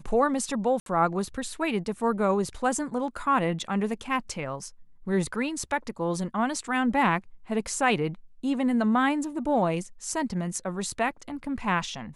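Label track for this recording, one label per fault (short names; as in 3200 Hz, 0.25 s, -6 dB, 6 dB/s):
0.800000	0.860000	gap 62 ms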